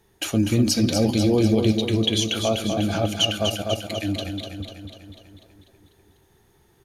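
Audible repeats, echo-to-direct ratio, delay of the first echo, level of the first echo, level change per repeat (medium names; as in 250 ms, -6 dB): 7, -4.0 dB, 247 ms, -6.0 dB, -4.5 dB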